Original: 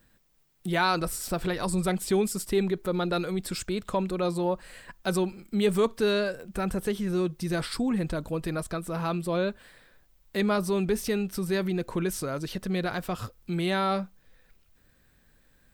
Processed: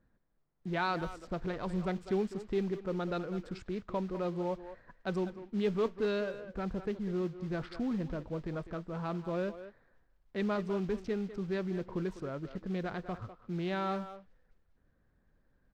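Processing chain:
adaptive Wiener filter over 15 samples
noise that follows the level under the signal 18 dB
high-frequency loss of the air 180 metres
far-end echo of a speakerphone 200 ms, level −11 dB
level −6.5 dB

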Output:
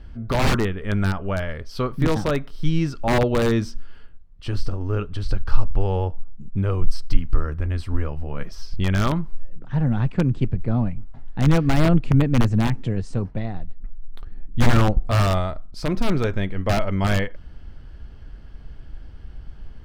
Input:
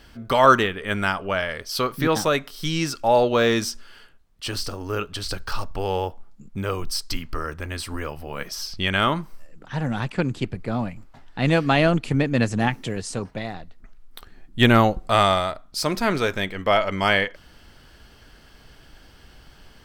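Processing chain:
wrap-around overflow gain 10.5 dB
RIAA equalisation playback
level −4 dB

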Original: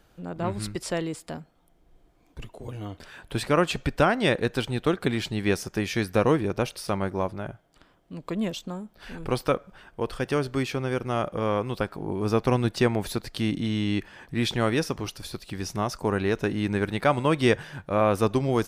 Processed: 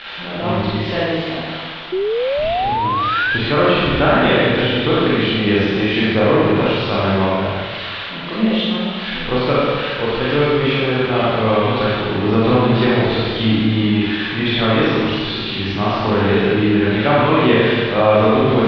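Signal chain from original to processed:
spike at every zero crossing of −16 dBFS
Butterworth low-pass 3,700 Hz 48 dB per octave
four-comb reverb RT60 1.6 s, combs from 28 ms, DRR −8 dB
in parallel at +2 dB: brickwall limiter −9 dBFS, peak gain reduction 8.5 dB
on the sum: sound drawn into the spectrogram rise, 0:01.92–0:03.38, 360–1,700 Hz −14 dBFS
level −4.5 dB

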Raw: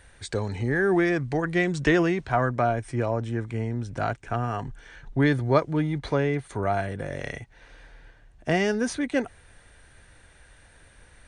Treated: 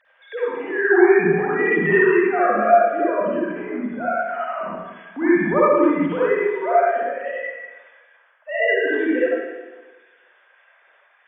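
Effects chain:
three sine waves on the formant tracks
convolution reverb RT60 1.3 s, pre-delay 48 ms, DRR −9.5 dB
level −3 dB

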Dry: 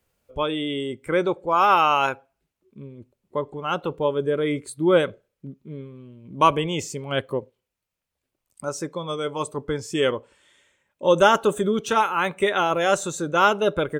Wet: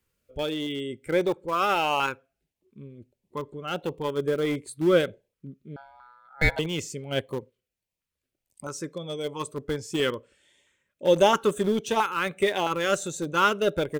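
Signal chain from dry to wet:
0:05.76–0:06.59: ring modulation 1,100 Hz
auto-filter notch saw up 1.5 Hz 610–1,500 Hz
in parallel at −11 dB: centre clipping without the shift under −21 dBFS
on the sum: level −3.5 dB

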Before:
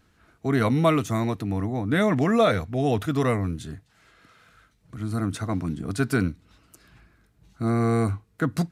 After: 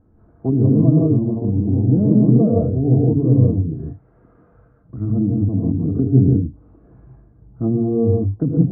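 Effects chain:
reverb whose tail is shaped and stops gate 200 ms rising, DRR −3 dB
treble cut that deepens with the level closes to 310 Hz, closed at −20 dBFS
Bessel low-pass filter 590 Hz, order 4
level +7 dB

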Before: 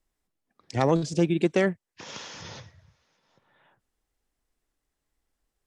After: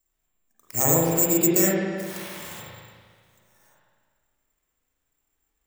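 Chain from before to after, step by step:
bad sample-rate conversion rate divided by 6×, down none, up zero stuff
spring reverb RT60 1.8 s, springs 36/50 ms, chirp 80 ms, DRR −7.5 dB
level −7.5 dB

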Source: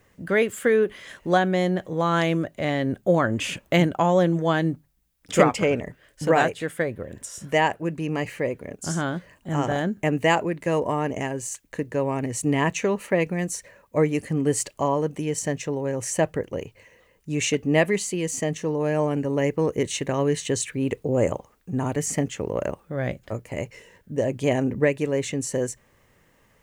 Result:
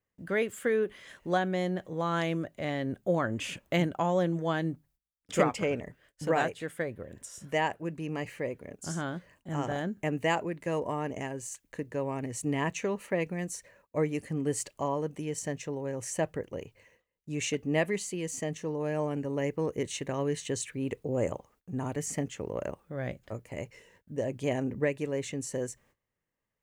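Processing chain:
noise gate −54 dBFS, range −19 dB
level −8 dB

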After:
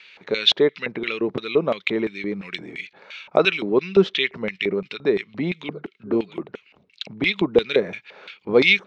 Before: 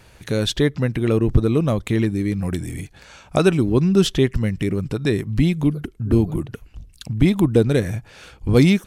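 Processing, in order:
loudspeaker in its box 160–6,100 Hz, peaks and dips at 190 Hz +8 dB, 410 Hz +7 dB, 730 Hz −8 dB, 1,300 Hz +3 dB, 2,200 Hz +8 dB, 3,900 Hz +7 dB
auto-filter band-pass square 2.9 Hz 730–2,800 Hz
level +8 dB

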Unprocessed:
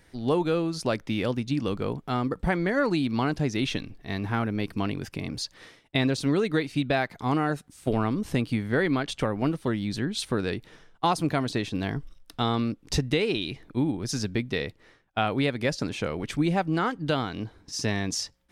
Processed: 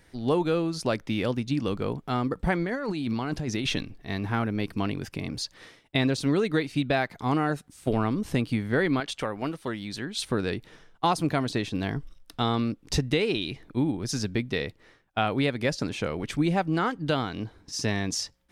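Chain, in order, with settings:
0:02.63–0:03.83: compressor whose output falls as the input rises −29 dBFS, ratio −1
0:09.00–0:10.19: low-shelf EQ 360 Hz −9.5 dB

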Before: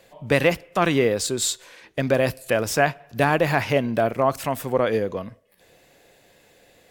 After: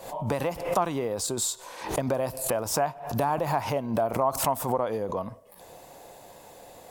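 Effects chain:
high-shelf EQ 10,000 Hz −4.5 dB
downward compressor 4 to 1, threshold −35 dBFS, peak gain reduction 18 dB
drawn EQ curve 440 Hz 0 dB, 940 Hz +11 dB, 1,700 Hz −6 dB, 2,600 Hz −6 dB, 11,000 Hz +7 dB
background raised ahead of every attack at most 84 dB per second
level +5 dB

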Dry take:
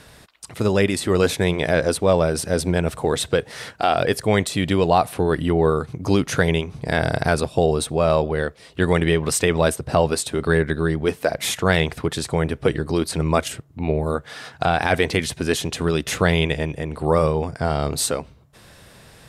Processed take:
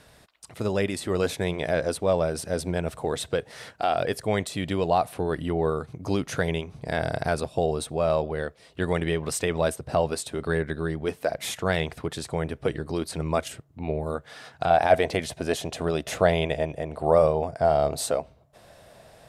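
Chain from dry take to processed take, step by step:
parametric band 650 Hz +4 dB 0.65 octaves, from 0:14.70 +14.5 dB
level −8 dB

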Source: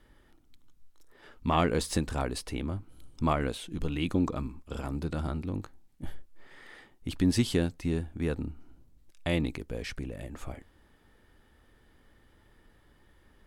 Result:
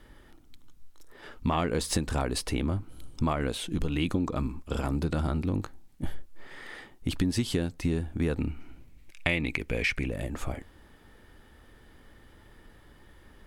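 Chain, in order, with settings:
0:08.38–0:10.08: parametric band 2,300 Hz +14 dB 0.68 octaves
downward compressor 6 to 1, threshold −31 dBFS, peak gain reduction 11.5 dB
level +7 dB

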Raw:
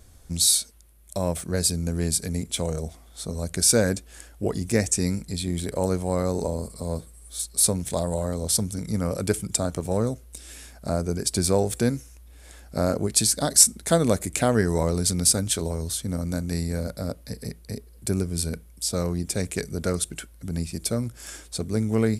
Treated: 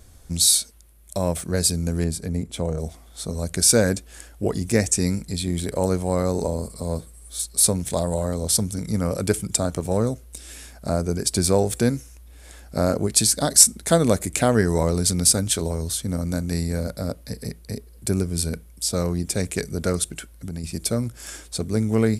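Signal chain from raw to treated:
0:02.04–0:02.80: high-shelf EQ 2,000 Hz −11 dB
0:20.09–0:20.64: downward compressor 3 to 1, threshold −32 dBFS, peak gain reduction 7.5 dB
level +2.5 dB

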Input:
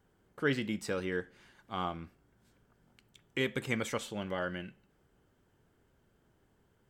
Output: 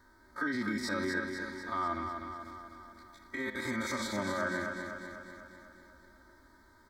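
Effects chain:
spectrum averaged block by block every 50 ms
parametric band 500 Hz +10.5 dB 0.38 octaves
comb filter 3.2 ms, depth 77%
harmonic and percussive parts rebalanced percussive −9 dB
octave-band graphic EQ 125/250/500/1,000/2,000/4,000/8,000 Hz −5/+3/−12/+7/+7/+10/−3 dB
in parallel at 0 dB: downward compressor, threshold −43 dBFS, peak gain reduction 18 dB
on the sum: brickwall limiter −26 dBFS, peak gain reduction 12 dB
Butterworth band-reject 2,800 Hz, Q 1.3
on a send: repeating echo 248 ms, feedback 59%, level −6 dB
on the sum: level +3 dB

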